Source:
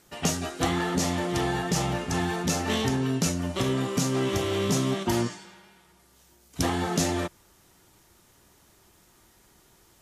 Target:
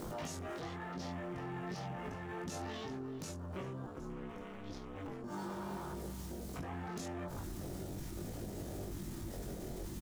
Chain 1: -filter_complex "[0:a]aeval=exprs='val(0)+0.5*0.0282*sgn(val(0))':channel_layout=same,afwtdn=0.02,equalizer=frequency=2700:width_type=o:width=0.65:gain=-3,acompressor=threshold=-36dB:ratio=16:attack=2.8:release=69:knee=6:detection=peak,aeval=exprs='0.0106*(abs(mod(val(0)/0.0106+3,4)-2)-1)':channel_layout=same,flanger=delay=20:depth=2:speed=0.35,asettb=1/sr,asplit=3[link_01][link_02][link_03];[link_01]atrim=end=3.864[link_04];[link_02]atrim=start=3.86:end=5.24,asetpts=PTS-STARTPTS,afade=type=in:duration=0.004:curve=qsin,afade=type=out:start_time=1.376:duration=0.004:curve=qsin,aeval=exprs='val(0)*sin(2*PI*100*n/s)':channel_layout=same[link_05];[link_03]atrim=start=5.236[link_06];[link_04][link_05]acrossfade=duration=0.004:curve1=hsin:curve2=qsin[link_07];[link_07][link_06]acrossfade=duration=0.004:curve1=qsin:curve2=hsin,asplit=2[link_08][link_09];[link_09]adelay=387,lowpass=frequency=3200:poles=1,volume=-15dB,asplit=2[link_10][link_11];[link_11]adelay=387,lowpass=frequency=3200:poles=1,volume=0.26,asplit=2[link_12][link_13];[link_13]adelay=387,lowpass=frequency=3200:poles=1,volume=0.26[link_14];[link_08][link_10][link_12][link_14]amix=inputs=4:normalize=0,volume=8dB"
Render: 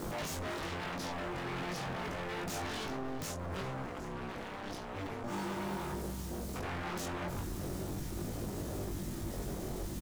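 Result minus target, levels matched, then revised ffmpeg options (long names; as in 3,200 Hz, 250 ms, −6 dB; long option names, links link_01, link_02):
downward compressor: peak gain reduction −8.5 dB
-filter_complex "[0:a]aeval=exprs='val(0)+0.5*0.0282*sgn(val(0))':channel_layout=same,afwtdn=0.02,equalizer=frequency=2700:width_type=o:width=0.65:gain=-3,acompressor=threshold=-45dB:ratio=16:attack=2.8:release=69:knee=6:detection=peak,aeval=exprs='0.0106*(abs(mod(val(0)/0.0106+3,4)-2)-1)':channel_layout=same,flanger=delay=20:depth=2:speed=0.35,asettb=1/sr,asplit=3[link_01][link_02][link_03];[link_01]atrim=end=3.864[link_04];[link_02]atrim=start=3.86:end=5.24,asetpts=PTS-STARTPTS,afade=type=in:duration=0.004:curve=qsin,afade=type=out:start_time=1.376:duration=0.004:curve=qsin,aeval=exprs='val(0)*sin(2*PI*100*n/s)':channel_layout=same[link_05];[link_03]atrim=start=5.236[link_06];[link_04][link_05]acrossfade=duration=0.004:curve1=hsin:curve2=qsin[link_07];[link_07][link_06]acrossfade=duration=0.004:curve1=qsin:curve2=hsin,asplit=2[link_08][link_09];[link_09]adelay=387,lowpass=frequency=3200:poles=1,volume=-15dB,asplit=2[link_10][link_11];[link_11]adelay=387,lowpass=frequency=3200:poles=1,volume=0.26,asplit=2[link_12][link_13];[link_13]adelay=387,lowpass=frequency=3200:poles=1,volume=0.26[link_14];[link_08][link_10][link_12][link_14]amix=inputs=4:normalize=0,volume=8dB"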